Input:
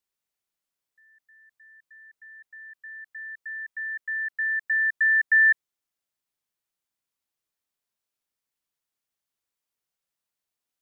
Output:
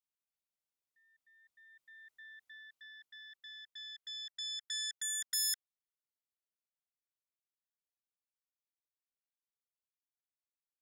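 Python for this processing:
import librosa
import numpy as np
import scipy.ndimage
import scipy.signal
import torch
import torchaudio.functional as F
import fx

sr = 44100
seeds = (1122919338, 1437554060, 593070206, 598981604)

y = fx.self_delay(x, sr, depth_ms=0.54)
y = fx.doppler_pass(y, sr, speed_mps=6, closest_m=3.1, pass_at_s=2.25)
y = fx.notch(y, sr, hz=1700.0, q=6.6)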